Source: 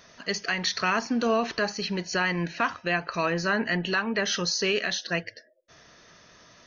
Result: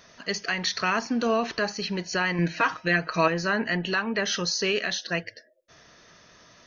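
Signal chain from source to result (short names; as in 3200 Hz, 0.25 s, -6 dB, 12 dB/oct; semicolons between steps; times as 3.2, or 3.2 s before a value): 2.38–3.28 comb 6.3 ms, depth 96%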